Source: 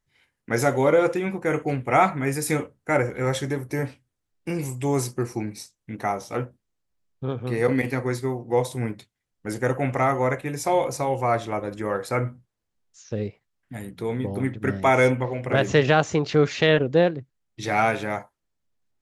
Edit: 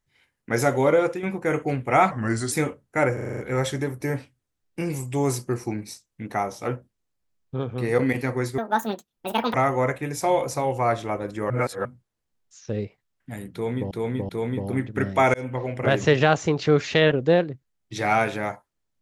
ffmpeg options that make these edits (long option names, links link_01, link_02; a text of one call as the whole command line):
ffmpeg -i in.wav -filter_complex "[0:a]asplit=17[link_01][link_02][link_03][link_04][link_05][link_06][link_07][link_08][link_09][link_10][link_11][link_12][link_13][link_14][link_15][link_16][link_17];[link_01]atrim=end=1.23,asetpts=PTS-STARTPTS,afade=type=out:start_time=0.82:duration=0.41:curve=qsin:silence=0.421697[link_18];[link_02]atrim=start=1.23:end=2.114,asetpts=PTS-STARTPTS,afade=type=in:duration=0.004:curve=hsin:silence=0.421697[link_19];[link_03]atrim=start=2.11:end=2.45,asetpts=PTS-STARTPTS,asetrate=36603,aresample=44100,atrim=end_sample=18065,asetpts=PTS-STARTPTS[link_20];[link_04]atrim=start=2.446:end=3.112[link_21];[link_05]atrim=start=3.068:end=3.112[link_22];[link_06]atrim=start=3.068:end=3.112[link_23];[link_07]atrim=start=3.068:end=3.112[link_24];[link_08]atrim=start=3.068:end=3.112[link_25];[link_09]atrim=start=3.068:end=3.112[link_26];[link_10]atrim=start=3.068:end=8.274[link_27];[link_11]atrim=start=8.27:end=9.97,asetpts=PTS-STARTPTS,asetrate=78057,aresample=44100[link_28];[link_12]atrim=start=9.966:end=11.932[link_29];[link_13]atrim=start=11.928:end=12.282,asetpts=PTS-STARTPTS,areverse[link_30];[link_14]atrim=start=12.278:end=14.342[link_31];[link_15]atrim=start=13.958:end=14.342[link_32];[link_16]atrim=start=13.958:end=15.01,asetpts=PTS-STARTPTS,afade=type=out:start_time=1.048:duration=0.004:curve=hsin[link_33];[link_17]atrim=start=15.01,asetpts=PTS-STARTPTS,afade=type=in:duration=0.29[link_34];[link_18][link_19]concat=n=2:v=0:a=1[link_35];[link_35][link_20]acrossfade=duration=0.004:curve1=hsin:curve2=hsin[link_36];[link_36][link_21]acrossfade=duration=0.004:curve1=hsin:curve2=hsin[link_37];[link_37][link_22]acrossfade=duration=0.004:curve1=hsin:curve2=hsin[link_38];[link_38][link_23]acrossfade=duration=0.004:curve1=hsin:curve2=hsin[link_39];[link_39][link_24]acrossfade=duration=0.004:curve1=hsin:curve2=hsin[link_40];[link_40][link_25]acrossfade=duration=0.004:curve1=hsin:curve2=hsin[link_41];[link_41][link_26]acrossfade=duration=0.004:curve1=hsin:curve2=hsin[link_42];[link_42][link_27]acrossfade=duration=0.004:curve1=hsin:curve2=hsin[link_43];[link_43][link_28]acrossfade=duration=0.004:curve1=hsin:curve2=hsin[link_44];[link_44][link_29]acrossfade=duration=0.004:curve1=hsin:curve2=hsin[link_45];[link_45][link_30]acrossfade=duration=0.004:curve1=hsin:curve2=hsin[link_46];[link_46][link_31]acrossfade=duration=0.004:curve1=hsin:curve2=hsin[link_47];[link_47][link_32]acrossfade=duration=0.004:curve1=hsin:curve2=hsin[link_48];[link_33][link_34]concat=n=2:v=0:a=1[link_49];[link_48][link_49]acrossfade=duration=0.004:curve1=hsin:curve2=hsin" out.wav